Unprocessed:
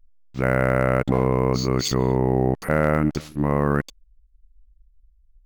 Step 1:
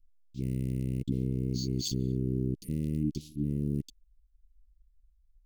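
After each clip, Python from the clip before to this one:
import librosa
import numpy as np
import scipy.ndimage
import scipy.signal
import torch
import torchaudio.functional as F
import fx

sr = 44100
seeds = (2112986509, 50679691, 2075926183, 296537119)

y = scipy.signal.sosfilt(scipy.signal.cheby2(4, 50, [630.0, 1700.0], 'bandstop', fs=sr, output='sos'), x)
y = y * librosa.db_to_amplitude(-8.0)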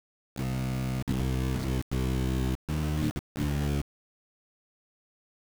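y = fx.octave_divider(x, sr, octaves=1, level_db=-4.0)
y = fx.env_lowpass_down(y, sr, base_hz=1000.0, full_db=-25.0)
y = fx.quant_dither(y, sr, seeds[0], bits=6, dither='none')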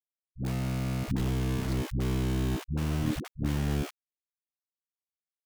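y = fx.dispersion(x, sr, late='highs', ms=89.0, hz=310.0)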